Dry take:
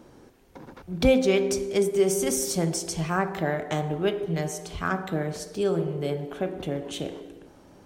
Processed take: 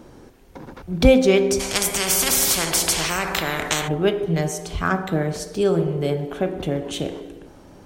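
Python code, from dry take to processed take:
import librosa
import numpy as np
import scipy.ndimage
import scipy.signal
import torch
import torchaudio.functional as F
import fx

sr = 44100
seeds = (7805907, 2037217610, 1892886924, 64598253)

y = fx.low_shelf(x, sr, hz=69.0, db=7.0)
y = fx.spectral_comp(y, sr, ratio=4.0, at=(1.59, 3.87), fade=0.02)
y = y * 10.0 ** (5.5 / 20.0)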